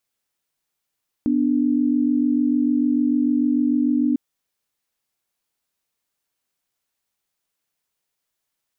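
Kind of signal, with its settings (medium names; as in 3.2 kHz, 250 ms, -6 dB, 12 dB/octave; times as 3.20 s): chord B3/D4 sine, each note -19 dBFS 2.90 s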